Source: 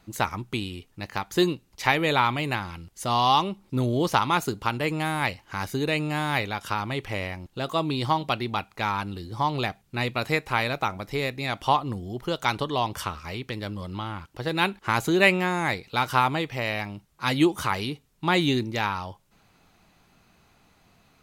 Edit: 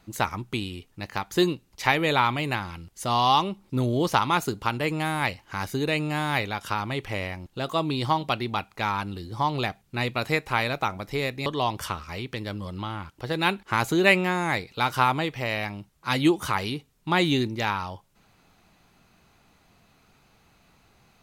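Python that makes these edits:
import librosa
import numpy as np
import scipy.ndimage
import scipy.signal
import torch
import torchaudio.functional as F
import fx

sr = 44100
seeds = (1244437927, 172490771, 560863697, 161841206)

y = fx.edit(x, sr, fx.cut(start_s=11.46, length_s=1.16), tone=tone)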